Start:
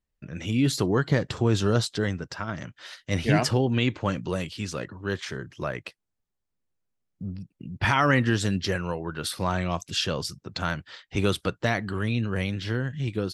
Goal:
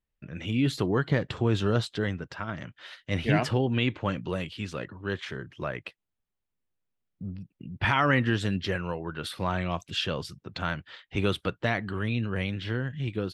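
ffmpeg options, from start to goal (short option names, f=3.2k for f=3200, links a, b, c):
-af "highshelf=f=4.2k:t=q:w=1.5:g=-7,volume=-2.5dB"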